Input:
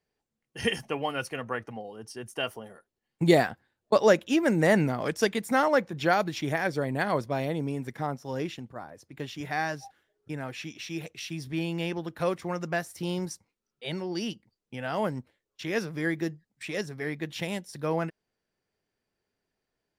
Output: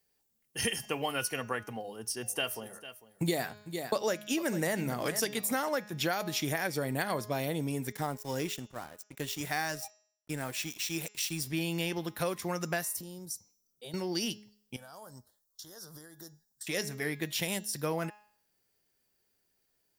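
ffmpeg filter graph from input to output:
ffmpeg -i in.wav -filter_complex "[0:a]asettb=1/sr,asplit=3[link_01][link_02][link_03];[link_01]atrim=end=1.774[link_04];[link_02]atrim=start=1.77:end=5.69,asetpts=PTS-STARTPTS,afade=type=in:duration=0.004:curve=qsin,afade=type=out:start_time=3.916:duration=0.004:curve=qsin,bandreject=frequency=50:width_type=h:width=6,bandreject=frequency=100:width_type=h:width=6,bandreject=frequency=150:width_type=h:width=6,aecho=1:1:449:0.133,atrim=end_sample=172872[link_05];[link_03]atrim=start=5.686[link_06];[link_04][link_05]acrossfade=duration=0.004:curve1=hsin:curve2=qsin[link_07];[link_07][link_06]acrossfade=duration=0.004:curve1=qsin:curve2=hsin,asettb=1/sr,asplit=3[link_08][link_09][link_10];[link_08]atrim=end=7.924[link_11];[link_09]atrim=start=7.92:end=11.48,asetpts=PTS-STARTPTS,afade=type=in:duration=0.004:curve=qsin,afade=type=out:start_time=3.556:duration=0.004:curve=qsin,equalizer=frequency=7800:width_type=o:width=0.33:gain=8,aeval=exprs='sgn(val(0))*max(abs(val(0))-0.00251,0)':channel_layout=same[link_12];[link_10]atrim=start=11.476[link_13];[link_11][link_12]acrossfade=duration=0.004:curve1=hsin:curve2=qsin[link_14];[link_14][link_13]acrossfade=duration=0.004:curve1=qsin:curve2=hsin,asettb=1/sr,asplit=3[link_15][link_16][link_17];[link_15]atrim=end=12.894[link_18];[link_16]atrim=start=12.89:end=13.94,asetpts=PTS-STARTPTS,afade=type=in:duration=0.004:curve=qsin,afade=type=out:start_time=1.046:duration=0.004:curve=qsin,equalizer=frequency=2100:width=0.85:gain=-14.5,acompressor=threshold=-42dB:ratio=6:attack=3.2:release=140:knee=1:detection=peak[link_19];[link_17]atrim=start=13.936[link_20];[link_18][link_19]acrossfade=duration=0.004:curve1=hsin:curve2=qsin[link_21];[link_21][link_20]acrossfade=duration=0.004:curve1=qsin:curve2=hsin,asettb=1/sr,asplit=3[link_22][link_23][link_24];[link_22]atrim=end=14.764[link_25];[link_23]atrim=start=14.76:end=16.67,asetpts=PTS-STARTPTS,afade=type=in:duration=0.004:curve=qsin,afade=type=out:start_time=1.906:duration=0.004:curve=qsin,equalizer=frequency=240:width=0.43:gain=-13,acompressor=threshold=-45dB:ratio=6:attack=3.2:release=140:knee=1:detection=peak,asuperstop=centerf=2400:order=4:qfactor=0.83[link_26];[link_24]atrim=start=16.666[link_27];[link_25][link_26]acrossfade=duration=0.004:curve1=hsin:curve2=qsin[link_28];[link_28][link_27]acrossfade=duration=0.004:curve1=qsin:curve2=hsin,aemphasis=mode=production:type=75fm,bandreject=frequency=209.3:width_type=h:width=4,bandreject=frequency=418.6:width_type=h:width=4,bandreject=frequency=627.9:width_type=h:width=4,bandreject=frequency=837.2:width_type=h:width=4,bandreject=frequency=1046.5:width_type=h:width=4,bandreject=frequency=1255.8:width_type=h:width=4,bandreject=frequency=1465.1:width_type=h:width=4,bandreject=frequency=1674.4:width_type=h:width=4,bandreject=frequency=1883.7:width_type=h:width=4,bandreject=frequency=2093:width_type=h:width=4,bandreject=frequency=2302.3:width_type=h:width=4,bandreject=frequency=2511.6:width_type=h:width=4,bandreject=frequency=2720.9:width_type=h:width=4,bandreject=frequency=2930.2:width_type=h:width=4,bandreject=frequency=3139.5:width_type=h:width=4,bandreject=frequency=3348.8:width_type=h:width=4,bandreject=frequency=3558.1:width_type=h:width=4,bandreject=frequency=3767.4:width_type=h:width=4,bandreject=frequency=3976.7:width_type=h:width=4,bandreject=frequency=4186:width_type=h:width=4,bandreject=frequency=4395.3:width_type=h:width=4,bandreject=frequency=4604.6:width_type=h:width=4,bandreject=frequency=4813.9:width_type=h:width=4,bandreject=frequency=5023.2:width_type=h:width=4,bandreject=frequency=5232.5:width_type=h:width=4,bandreject=frequency=5441.8:width_type=h:width=4,bandreject=frequency=5651.1:width_type=h:width=4,bandreject=frequency=5860.4:width_type=h:width=4,bandreject=frequency=6069.7:width_type=h:width=4,bandreject=frequency=6279:width_type=h:width=4,bandreject=frequency=6488.3:width_type=h:width=4,bandreject=frequency=6697.6:width_type=h:width=4,bandreject=frequency=6906.9:width_type=h:width=4,bandreject=frequency=7116.2:width_type=h:width=4,bandreject=frequency=7325.5:width_type=h:width=4,acompressor=threshold=-28dB:ratio=6" out.wav

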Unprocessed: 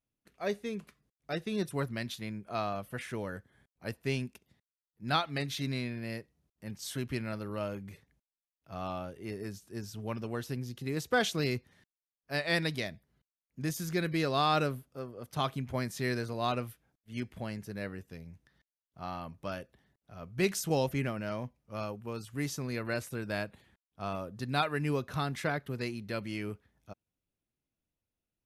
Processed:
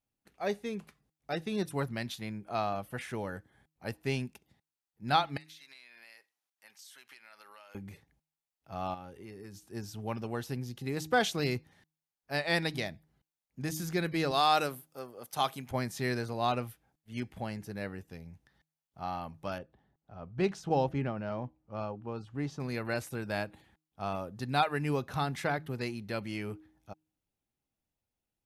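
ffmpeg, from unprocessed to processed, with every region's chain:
ffmpeg -i in.wav -filter_complex "[0:a]asettb=1/sr,asplit=3[link_01][link_02][link_03];[link_01]atrim=end=5.374[link_04];[link_02]atrim=start=5.37:end=7.75,asetpts=PTS-STARTPTS,afade=type=in:duration=0.004:curve=qsin,afade=type=out:start_time=2.376:duration=0.004:curve=qsin,highpass=1300,acompressor=threshold=-50dB:ratio=8:attack=3.2:release=140:knee=1:detection=peak[link_05];[link_03]atrim=start=7.746[link_06];[link_04][link_05]acrossfade=duration=0.004:curve1=hsin:curve2=qsin[link_07];[link_07][link_06]acrossfade=duration=0.004:curve1=qsin:curve2=hsin,asettb=1/sr,asplit=3[link_08][link_09][link_10];[link_08]atrim=end=8.944[link_11];[link_09]atrim=start=8.94:end=9.67,asetpts=PTS-STARTPTS,afade=type=in:duration=0.004:curve=qsin,afade=type=out:start_time=0.726:duration=0.004:curve=qsin,bandreject=frequency=650:width=5.7,acompressor=threshold=-44dB:ratio=4:attack=3.2:release=140:knee=1:detection=peak[link_12];[link_10]atrim=start=9.666[link_13];[link_11][link_12]acrossfade=duration=0.004:curve1=hsin:curve2=qsin[link_14];[link_14][link_13]acrossfade=duration=0.004:curve1=qsin:curve2=hsin,asettb=1/sr,asplit=3[link_15][link_16][link_17];[link_15]atrim=end=14.314[link_18];[link_16]atrim=start=14.31:end=15.71,asetpts=PTS-STARTPTS,afade=type=in:duration=0.004:curve=qsin,afade=type=out:start_time=1.396:duration=0.004:curve=qsin,highpass=frequency=380:poles=1,highshelf=frequency=6000:gain=11[link_19];[link_17]atrim=start=15.706[link_20];[link_18][link_19]acrossfade=duration=0.004:curve1=hsin:curve2=qsin[link_21];[link_21][link_20]acrossfade=duration=0.004:curve1=qsin:curve2=hsin,asettb=1/sr,asplit=3[link_22][link_23][link_24];[link_22]atrim=end=19.584[link_25];[link_23]atrim=start=19.58:end=22.6,asetpts=PTS-STARTPTS,afade=type=in:duration=0.004:curve=qsin,afade=type=out:start_time=3.016:duration=0.004:curve=qsin,equalizer=frequency=2100:width_type=o:width=0.68:gain=-5,adynamicsmooth=sensitivity=1:basefreq=3200[link_26];[link_24]atrim=start=22.596[link_27];[link_25][link_26]acrossfade=duration=0.004:curve1=hsin:curve2=qsin[link_28];[link_28][link_27]acrossfade=duration=0.004:curve1=qsin:curve2=hsin,equalizer=frequency=810:width_type=o:width=0.24:gain=8.5,bandreject=frequency=156.3:width_type=h:width=4,bandreject=frequency=312.6:width_type=h:width=4" out.wav

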